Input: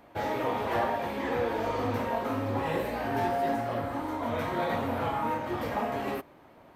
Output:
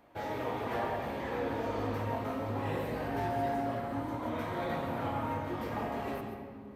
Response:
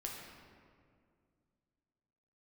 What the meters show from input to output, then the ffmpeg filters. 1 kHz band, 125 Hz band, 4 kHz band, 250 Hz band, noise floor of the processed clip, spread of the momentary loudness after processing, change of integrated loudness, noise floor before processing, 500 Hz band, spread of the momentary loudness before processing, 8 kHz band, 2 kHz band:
-5.5 dB, -1.5 dB, -5.5 dB, -3.5 dB, -46 dBFS, 4 LU, -4.5 dB, -55 dBFS, -5.0 dB, 4 LU, no reading, -5.5 dB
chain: -filter_complex "[0:a]asplit=2[s0][s1];[s1]lowshelf=f=270:g=9[s2];[1:a]atrim=start_sample=2205,adelay=136[s3];[s2][s3]afir=irnorm=-1:irlink=0,volume=0.562[s4];[s0][s4]amix=inputs=2:normalize=0,volume=0.473"

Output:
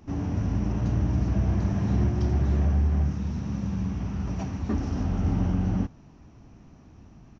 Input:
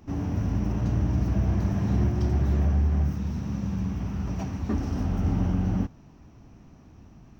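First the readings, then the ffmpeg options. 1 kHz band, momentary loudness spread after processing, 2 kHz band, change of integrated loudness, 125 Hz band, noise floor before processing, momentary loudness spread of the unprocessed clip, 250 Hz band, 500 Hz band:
0.0 dB, 7 LU, 0.0 dB, 0.0 dB, 0.0 dB, -52 dBFS, 7 LU, 0.0 dB, 0.0 dB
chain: -af "aresample=16000,aresample=44100"

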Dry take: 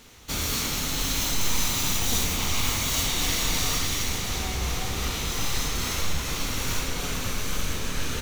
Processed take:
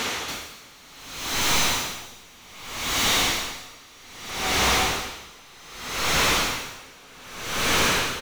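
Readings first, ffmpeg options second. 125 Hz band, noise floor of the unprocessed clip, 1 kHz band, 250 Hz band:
-5.5 dB, -31 dBFS, +6.5 dB, -1.0 dB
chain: -filter_complex "[0:a]aecho=1:1:209:0.531,asplit=2[s0][s1];[s1]highpass=f=720:p=1,volume=79.4,asoftclip=type=tanh:threshold=0.316[s2];[s0][s2]amix=inputs=2:normalize=0,lowpass=f=2700:p=1,volume=0.501,aeval=exprs='val(0)*pow(10,-28*(0.5-0.5*cos(2*PI*0.64*n/s))/20)':c=same"

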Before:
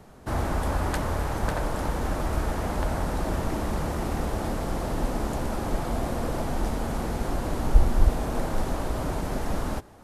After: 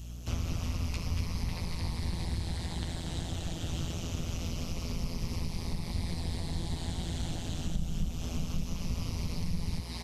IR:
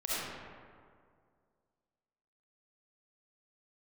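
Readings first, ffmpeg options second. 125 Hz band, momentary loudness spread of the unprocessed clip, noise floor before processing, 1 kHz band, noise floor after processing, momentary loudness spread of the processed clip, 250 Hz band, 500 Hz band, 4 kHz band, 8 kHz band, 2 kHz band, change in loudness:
-4.0 dB, 5 LU, -32 dBFS, -16.5 dB, -40 dBFS, 2 LU, -7.5 dB, -15.5 dB, +1.0 dB, -3.0 dB, -10.5 dB, -7.0 dB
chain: -filter_complex "[0:a]afftfilt=real='re*pow(10,8/40*sin(2*PI*(0.87*log(max(b,1)*sr/1024/100)/log(2)-(-0.25)*(pts-256)/sr)))':imag='im*pow(10,8/40*sin(2*PI*(0.87*log(max(b,1)*sr/1024/100)/log(2)-(-0.25)*(pts-256)/sr)))':win_size=1024:overlap=0.75,asplit=2[s0][s1];[s1]adelay=12,volume=0.596[s2];[s0][s2]amix=inputs=2:normalize=0,acrossover=split=190[s3][s4];[s4]aecho=1:1:222|235:0.355|0.668[s5];[s3][s5]amix=inputs=2:normalize=0,acompressor=threshold=0.0316:ratio=6,tremolo=f=170:d=0.974,aeval=exprs='val(0)+0.00447*(sin(2*PI*60*n/s)+sin(2*PI*2*60*n/s)/2+sin(2*PI*3*60*n/s)/3+sin(2*PI*4*60*n/s)/4+sin(2*PI*5*60*n/s)/5)':c=same,aexciter=amount=4.7:drive=7.3:freq=2200,bass=f=250:g=15,treble=f=4000:g=12,acrossover=split=4500[s6][s7];[s7]acompressor=threshold=0.00224:ratio=4:attack=1:release=60[s8];[s6][s8]amix=inputs=2:normalize=0,volume=0.376"

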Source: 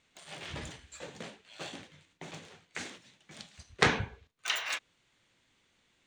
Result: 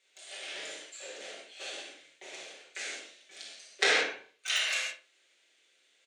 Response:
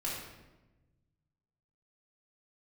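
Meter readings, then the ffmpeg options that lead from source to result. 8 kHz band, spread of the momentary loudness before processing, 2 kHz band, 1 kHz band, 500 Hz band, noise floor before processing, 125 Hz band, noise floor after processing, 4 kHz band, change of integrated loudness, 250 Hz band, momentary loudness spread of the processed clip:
+5.5 dB, 22 LU, +3.5 dB, -3.5 dB, +0.5 dB, -73 dBFS, under -25 dB, -69 dBFS, +5.0 dB, +3.0 dB, -9.5 dB, 20 LU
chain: -filter_complex "[0:a]highpass=f=440:w=0.5412,highpass=f=440:w=1.3066,equalizer=f=1000:w=1.3:g=-14.5,asplit=2[s0][s1];[s1]adelay=62,lowpass=f=2600:p=1,volume=0.282,asplit=2[s2][s3];[s3]adelay=62,lowpass=f=2600:p=1,volume=0.31,asplit=2[s4][s5];[s5]adelay=62,lowpass=f=2600:p=1,volume=0.31[s6];[s0][s2][s4][s6]amix=inputs=4:normalize=0[s7];[1:a]atrim=start_sample=2205,atrim=end_sample=4410,asetrate=24696,aresample=44100[s8];[s7][s8]afir=irnorm=-1:irlink=0"

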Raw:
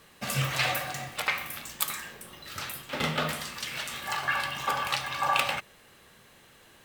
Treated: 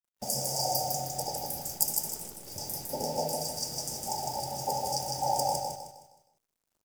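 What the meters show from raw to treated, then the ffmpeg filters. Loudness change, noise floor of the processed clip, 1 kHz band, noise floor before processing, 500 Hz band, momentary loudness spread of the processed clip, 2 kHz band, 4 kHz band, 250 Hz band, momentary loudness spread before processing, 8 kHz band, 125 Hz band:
-1.5 dB, -84 dBFS, -0.5 dB, -57 dBFS, +3.5 dB, 8 LU, -27.0 dB, -3.0 dB, -2.5 dB, 11 LU, +6.0 dB, -4.5 dB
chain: -filter_complex "[0:a]agate=range=0.0224:threshold=0.00708:ratio=3:detection=peak,afftfilt=real='re*(1-between(b*sr/4096,920,4600))':imag='im*(1-between(b*sr/4096,920,4600))':win_size=4096:overlap=0.75,adynamicequalizer=threshold=0.00562:dfrequency=4700:dqfactor=0.77:tfrequency=4700:tqfactor=0.77:attack=5:release=100:ratio=0.375:range=2:mode=boostabove:tftype=bell,acrossover=split=390[s0][s1];[s0]acompressor=threshold=0.00501:ratio=6[s2];[s2][s1]amix=inputs=2:normalize=0,acrusher=bits=9:dc=4:mix=0:aa=0.000001,asplit=2[s3][s4];[s4]aecho=0:1:156|312|468|624|780:0.668|0.247|0.0915|0.0339|0.0125[s5];[s3][s5]amix=inputs=2:normalize=0,volume=1.33"

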